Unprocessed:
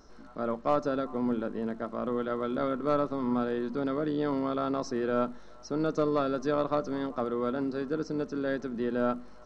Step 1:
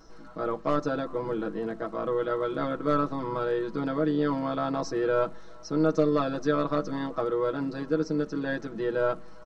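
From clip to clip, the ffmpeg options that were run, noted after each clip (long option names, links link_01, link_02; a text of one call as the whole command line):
ffmpeg -i in.wav -af "aecho=1:1:6.2:1" out.wav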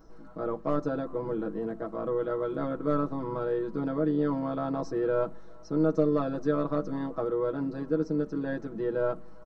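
ffmpeg -i in.wav -af "equalizer=frequency=4300:width=0.32:gain=-11.5" out.wav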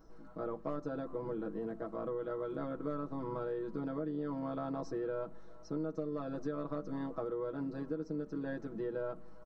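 ffmpeg -i in.wav -af "acompressor=threshold=-29dB:ratio=6,volume=-5dB" out.wav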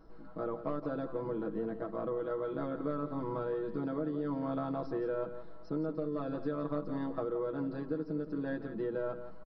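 ffmpeg -i in.wav -filter_complex "[0:a]asplit=2[link_01][link_02];[link_02]aecho=0:1:171:0.282[link_03];[link_01][link_03]amix=inputs=2:normalize=0,aresample=11025,aresample=44100,volume=2.5dB" out.wav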